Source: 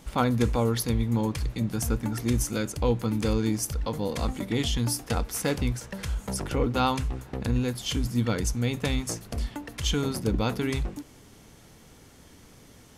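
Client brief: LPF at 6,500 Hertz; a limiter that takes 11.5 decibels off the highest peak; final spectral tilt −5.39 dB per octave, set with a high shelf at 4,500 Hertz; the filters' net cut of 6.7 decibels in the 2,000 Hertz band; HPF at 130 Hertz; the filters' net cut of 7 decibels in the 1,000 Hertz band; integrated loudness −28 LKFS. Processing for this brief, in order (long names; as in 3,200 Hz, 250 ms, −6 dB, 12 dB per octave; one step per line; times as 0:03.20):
high-pass filter 130 Hz
low-pass filter 6,500 Hz
parametric band 1,000 Hz −8 dB
parametric band 2,000 Hz −5.5 dB
high-shelf EQ 4,500 Hz −3.5 dB
level +7 dB
brickwall limiter −17 dBFS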